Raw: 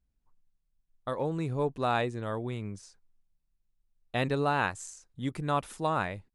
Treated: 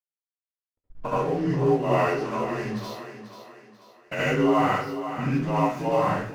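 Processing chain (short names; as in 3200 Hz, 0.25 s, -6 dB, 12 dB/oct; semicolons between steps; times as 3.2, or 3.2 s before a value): inharmonic rescaling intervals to 88%; recorder AGC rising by 30 dB/s; low-pass opened by the level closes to 680 Hz, open at -26 dBFS; 1.99–4.26 tilt +2.5 dB/oct; crossover distortion -48.5 dBFS; flange 0.66 Hz, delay 5.8 ms, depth 7.5 ms, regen -50%; thinning echo 0.488 s, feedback 42%, high-pass 200 Hz, level -10 dB; reverb RT60 0.45 s, pre-delay 62 ms, DRR -6.5 dB; gain +5 dB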